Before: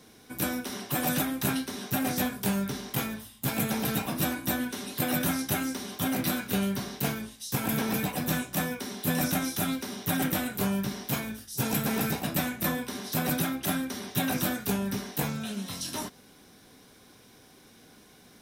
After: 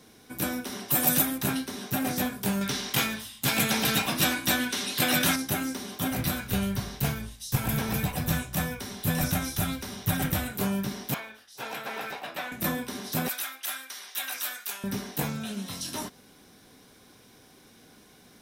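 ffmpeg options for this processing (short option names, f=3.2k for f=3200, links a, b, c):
-filter_complex "[0:a]asettb=1/sr,asplit=3[a][b][c];[a]atrim=end=0.884[d];[b]atrim=start=0.88:end=1.38,asetpts=PTS-STARTPTS,afade=t=in:d=0.004:c=qsin,afade=t=out:st=0.496:d=0.004:c=qsin,highshelf=f=5.6k:g=10[e];[c]atrim=start=1.376[f];[d][e]acrossfade=d=0.004:c1=hsin:c2=qsin[g];[g][f]acrossfade=d=0.004:c1=qsin:c2=hsin,asettb=1/sr,asplit=3[h][i][j];[h]atrim=end=2.614[k];[i]atrim=start=2.61:end=5.36,asetpts=PTS-STARTPTS,afade=t=in:d=0.004:c=qsin,afade=t=out:st=2.746:d=0.004:c=qsin,equalizer=f=3.7k:w=0.34:g=10.5[l];[j]atrim=start=5.356[m];[k][l]acrossfade=d=0.004:c1=hsin:c2=qsin[n];[n][m]acrossfade=d=0.004:c1=qsin:c2=hsin,asplit=3[o][p][q];[o]afade=t=out:st=6.09:d=0.02[r];[p]asubboost=boost=7.5:cutoff=92,afade=t=in:st=6.09:d=0.02,afade=t=out:st=10.51:d=0.02[s];[q]afade=t=in:st=10.51:d=0.02[t];[r][s][t]amix=inputs=3:normalize=0,asettb=1/sr,asplit=3[u][v][w];[u]atrim=end=11.144[x];[v]atrim=start=11.14:end=12.52,asetpts=PTS-STARTPTS,afade=t=in:d=0.004:c=qsin,afade=t=out:st=1.376:d=0.004:c=qsin,acrossover=split=470 4100:gain=0.0708 1 0.158[y][z][aa];[y][z][aa]amix=inputs=3:normalize=0[ab];[w]atrim=start=12.516[ac];[x][ab]acrossfade=d=0.004:c1=hsin:c2=qsin[ad];[ad][ac]acrossfade=d=0.004:c1=qsin:c2=hsin,asettb=1/sr,asplit=3[ae][af][ag];[ae]atrim=end=13.284[ah];[af]atrim=start=13.28:end=14.84,asetpts=PTS-STARTPTS,afade=t=in:d=0.004:c=qsin,afade=t=out:st=1.556:d=0.004:c=qsin,highpass=1.3k[ai];[ag]atrim=start=14.836[aj];[ah][ai]acrossfade=d=0.004:c1=hsin:c2=qsin[ak];[ak][aj]acrossfade=d=0.004:c1=qsin:c2=hsin"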